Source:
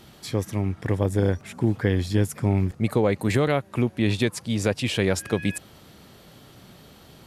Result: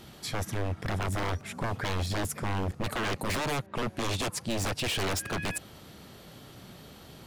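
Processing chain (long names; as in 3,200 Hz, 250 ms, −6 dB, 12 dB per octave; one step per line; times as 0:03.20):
wave folding −25 dBFS
0:03.66–0:04.48: low-pass that shuts in the quiet parts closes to 2,000 Hz, open at −32 dBFS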